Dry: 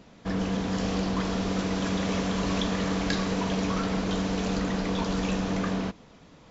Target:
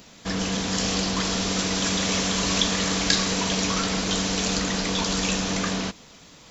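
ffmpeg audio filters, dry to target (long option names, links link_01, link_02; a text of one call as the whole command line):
ffmpeg -i in.wav -af "crystalizer=i=6.5:c=0" out.wav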